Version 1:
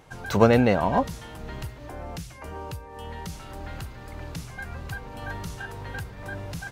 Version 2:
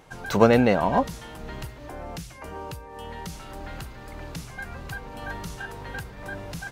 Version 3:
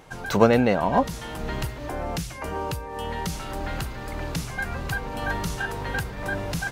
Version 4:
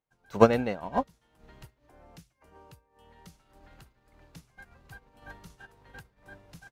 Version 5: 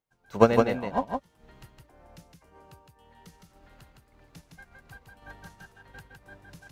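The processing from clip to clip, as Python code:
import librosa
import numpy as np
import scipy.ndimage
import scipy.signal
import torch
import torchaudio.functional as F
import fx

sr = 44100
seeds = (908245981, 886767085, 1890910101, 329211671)

y1 = fx.peak_eq(x, sr, hz=91.0, db=-7.0, octaves=0.74)
y1 = y1 * 10.0 ** (1.0 / 20.0)
y2 = fx.rider(y1, sr, range_db=4, speed_s=0.5)
y2 = y2 * 10.0 ** (3.0 / 20.0)
y3 = fx.upward_expand(y2, sr, threshold_db=-40.0, expansion=2.5)
y3 = y3 * 10.0 ** (1.0 / 20.0)
y4 = y3 + 10.0 ** (-4.0 / 20.0) * np.pad(y3, (int(162 * sr / 1000.0), 0))[:len(y3)]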